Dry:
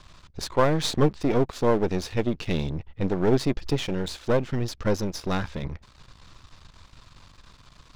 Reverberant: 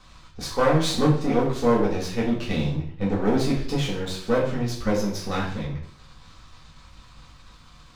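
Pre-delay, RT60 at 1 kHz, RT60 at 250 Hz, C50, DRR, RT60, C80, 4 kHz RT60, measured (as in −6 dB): 3 ms, 0.55 s, 0.65 s, 5.5 dB, −6.5 dB, 0.55 s, 9.5 dB, 0.50 s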